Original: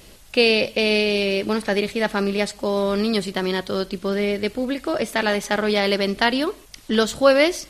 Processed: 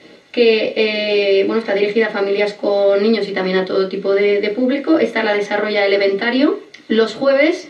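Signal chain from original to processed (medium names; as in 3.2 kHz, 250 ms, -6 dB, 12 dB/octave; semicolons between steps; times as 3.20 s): treble shelf 3.5 kHz -6 dB; peak limiter -13.5 dBFS, peak gain reduction 9.5 dB; band-pass 260–5400 Hz; reverberation RT60 0.25 s, pre-delay 3 ms, DRR 1.5 dB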